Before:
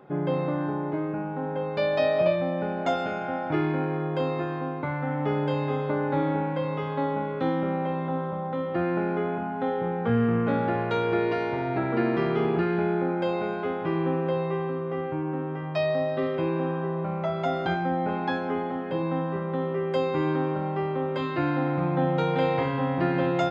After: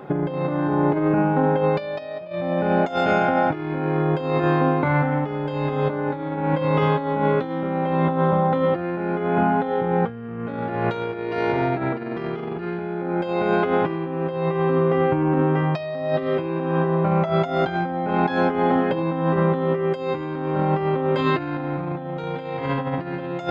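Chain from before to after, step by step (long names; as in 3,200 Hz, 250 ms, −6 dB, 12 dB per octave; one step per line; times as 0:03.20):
compressor whose output falls as the input rises −30 dBFS, ratio −0.5
level +8.5 dB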